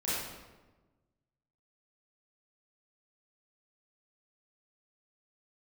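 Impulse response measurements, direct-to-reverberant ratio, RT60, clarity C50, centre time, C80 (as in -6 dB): -11.0 dB, 1.2 s, -3.0 dB, 94 ms, 0.5 dB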